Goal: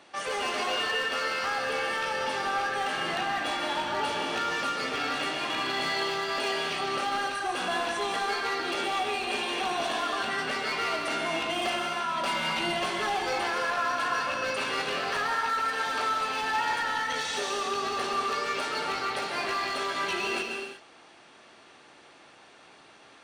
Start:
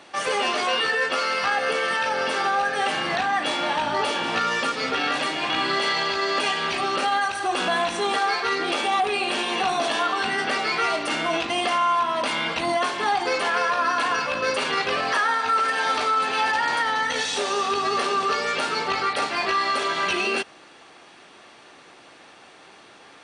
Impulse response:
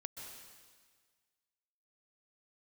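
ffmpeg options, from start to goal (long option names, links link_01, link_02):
-filter_complex "[0:a]asettb=1/sr,asplit=3[link_01][link_02][link_03];[link_01]atrim=end=11.614[link_04];[link_02]atrim=start=11.61:end=13.33,asetpts=PTS-STARTPTS,afade=type=in:duration=0.004:curve=qsin,afade=type=out:start_time=1.716:duration=0.004:curve=qsin,aecho=1:1:5.3:0.81,atrim=end_sample=75852[link_05];[link_03]atrim=start=13.326[link_06];[link_04][link_05]acrossfade=duration=0.004:curve1=hsin:curve2=qsin[link_07];[link_07][link_06]acrossfade=duration=0.004:curve1=qsin:curve2=hsin,asoftclip=type=hard:threshold=-19dB[link_08];[1:a]atrim=start_sample=2205,afade=type=out:start_time=0.43:duration=0.01,atrim=end_sample=19404[link_09];[link_08][link_09]afir=irnorm=-1:irlink=0,volume=-2dB"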